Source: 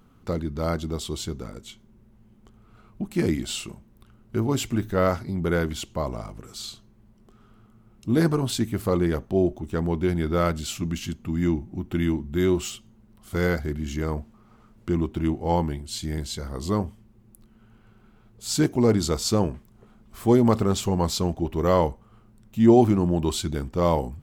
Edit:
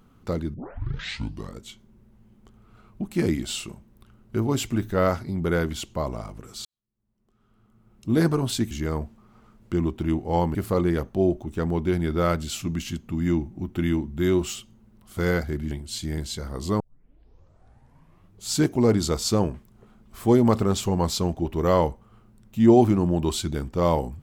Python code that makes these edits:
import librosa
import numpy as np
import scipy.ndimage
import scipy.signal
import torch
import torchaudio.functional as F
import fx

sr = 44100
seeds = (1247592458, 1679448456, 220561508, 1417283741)

y = fx.edit(x, sr, fx.tape_start(start_s=0.54, length_s=1.05),
    fx.fade_in_span(start_s=6.65, length_s=1.46, curve='qua'),
    fx.move(start_s=13.87, length_s=1.84, to_s=8.71),
    fx.tape_start(start_s=16.8, length_s=1.69), tone=tone)